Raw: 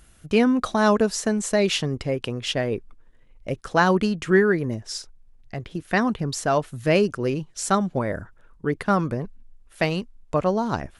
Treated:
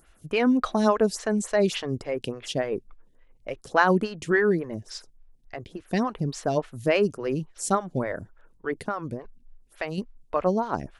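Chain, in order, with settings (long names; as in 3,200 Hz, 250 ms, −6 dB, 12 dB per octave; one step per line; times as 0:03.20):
0:08.88–0:09.98: downward compressor 2 to 1, threshold −30 dBFS, peak gain reduction 8 dB
phaser with staggered stages 3.5 Hz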